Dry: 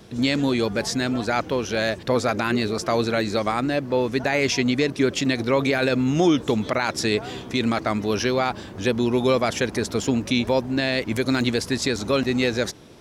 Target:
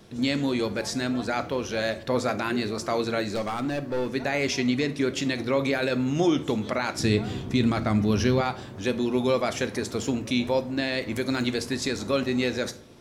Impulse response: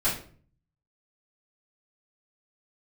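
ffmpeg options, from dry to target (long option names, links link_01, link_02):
-filter_complex "[0:a]asettb=1/sr,asplit=3[link_01][link_02][link_03];[link_01]atrim=end=3.354[link_04];[link_02]atrim=start=3.35:end=4.12,asetpts=PTS-STARTPTS,afade=type=in:duration=0.004:curve=qsin,afade=type=out:start_time=0.766:duration=0.004:curve=qsin,asoftclip=type=hard:threshold=-19.5dB[link_05];[link_03]atrim=start=4.116[link_06];[link_04][link_05]acrossfade=duration=0.004:curve1=hsin:curve2=qsin[link_07];[link_07][link_06]acrossfade=duration=0.004:curve1=qsin:curve2=hsin,asettb=1/sr,asplit=3[link_08][link_09][link_10];[link_08]atrim=end=6.994[link_11];[link_09]atrim=start=6.99:end=8.41,asetpts=PTS-STARTPTS,afade=type=in:duration=0.004:curve=qsin,afade=type=out:start_time=1.416:duration=0.004:curve=qsin,bass=frequency=250:gain=12,treble=frequency=4000:gain=0[link_12];[link_10]atrim=start=8.406[link_13];[link_11][link_12]acrossfade=duration=0.004:curve1=hsin:curve2=qsin[link_14];[link_14][link_13]acrossfade=duration=0.004:curve1=qsin:curve2=hsin,asplit=2[link_15][link_16];[1:a]atrim=start_sample=2205,asetrate=37926,aresample=44100,highshelf=frequency=11000:gain=9[link_17];[link_16][link_17]afir=irnorm=-1:irlink=0,volume=-20.5dB[link_18];[link_15][link_18]amix=inputs=2:normalize=0,volume=-5.5dB"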